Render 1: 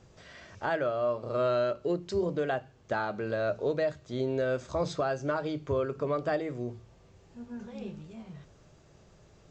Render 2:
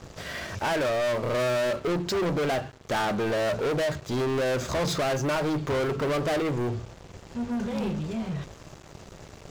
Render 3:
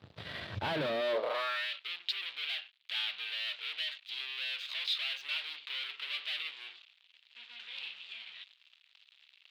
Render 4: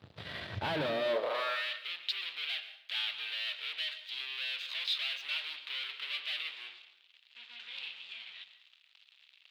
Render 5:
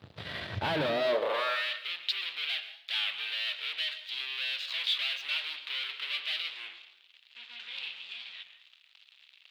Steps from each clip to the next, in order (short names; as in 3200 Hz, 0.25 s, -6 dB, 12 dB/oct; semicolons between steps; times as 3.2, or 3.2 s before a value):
sample leveller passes 5; gain -3 dB
added harmonics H 7 -18 dB, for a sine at -23 dBFS; high-pass sweep 100 Hz -> 2700 Hz, 0.7–1.72; resonant high shelf 5000 Hz -10 dB, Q 3; gain -8.5 dB
plate-style reverb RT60 0.75 s, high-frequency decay 0.75×, pre-delay 0.105 s, DRR 11.5 dB
record warp 33 1/3 rpm, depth 100 cents; gain +3.5 dB